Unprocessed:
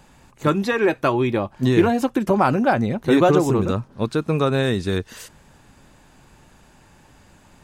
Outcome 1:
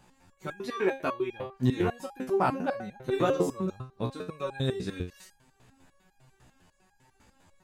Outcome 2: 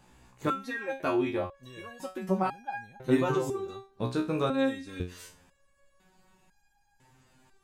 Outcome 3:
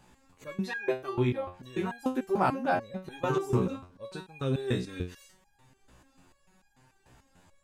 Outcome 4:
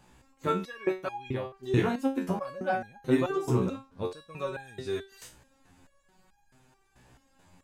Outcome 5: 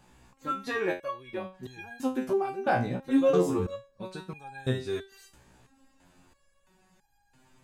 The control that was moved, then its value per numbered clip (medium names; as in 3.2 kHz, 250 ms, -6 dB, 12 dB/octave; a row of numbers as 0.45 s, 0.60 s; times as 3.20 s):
resonator arpeggio, rate: 10 Hz, 2 Hz, 6.8 Hz, 4.6 Hz, 3 Hz